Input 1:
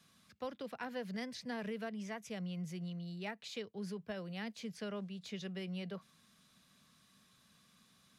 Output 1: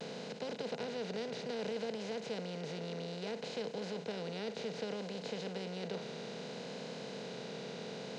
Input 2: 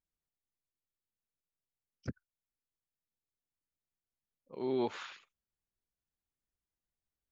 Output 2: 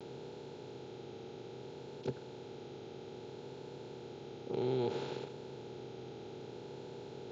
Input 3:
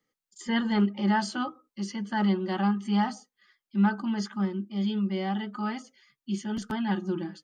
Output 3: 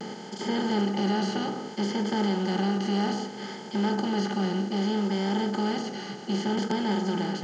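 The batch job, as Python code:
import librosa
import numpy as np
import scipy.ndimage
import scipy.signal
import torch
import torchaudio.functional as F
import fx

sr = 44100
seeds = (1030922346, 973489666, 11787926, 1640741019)

y = fx.bin_compress(x, sr, power=0.2)
y = fx.cabinet(y, sr, low_hz=120.0, low_slope=12, high_hz=7400.0, hz=(130.0, 450.0, 1100.0, 1800.0, 4000.0), db=(8, 8, -7, -8, 3))
y = fx.vibrato(y, sr, rate_hz=0.62, depth_cents=38.0)
y = F.gain(torch.from_numpy(y), -7.0).numpy()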